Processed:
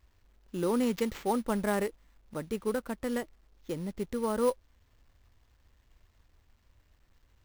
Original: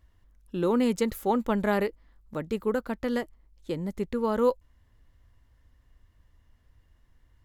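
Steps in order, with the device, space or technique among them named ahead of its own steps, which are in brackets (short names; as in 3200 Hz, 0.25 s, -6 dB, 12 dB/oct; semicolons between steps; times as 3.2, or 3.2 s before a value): early companding sampler (sample-rate reducer 9900 Hz, jitter 0%; companded quantiser 6-bit); gain -4 dB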